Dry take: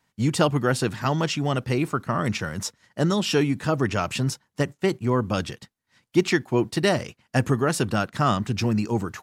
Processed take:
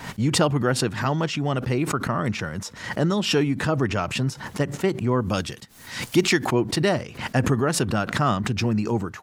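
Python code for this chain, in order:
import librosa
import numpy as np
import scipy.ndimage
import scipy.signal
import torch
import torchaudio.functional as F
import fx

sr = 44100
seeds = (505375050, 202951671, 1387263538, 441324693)

y = fx.high_shelf(x, sr, hz=4000.0, db=fx.steps((0.0, -7.0), (5.2, 4.5), (6.44, -6.5)))
y = fx.pre_swell(y, sr, db_per_s=85.0)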